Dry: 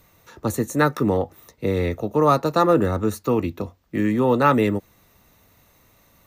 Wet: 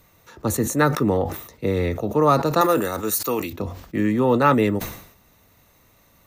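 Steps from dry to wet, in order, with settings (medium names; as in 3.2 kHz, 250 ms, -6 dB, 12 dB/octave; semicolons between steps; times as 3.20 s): 2.61–3.53 s: RIAA curve recording; decay stretcher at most 87 dB/s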